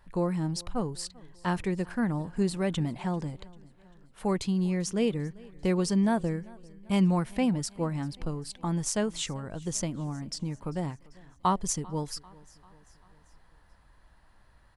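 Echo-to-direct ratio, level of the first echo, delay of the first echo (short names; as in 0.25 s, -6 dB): -22.0 dB, -23.5 dB, 0.393 s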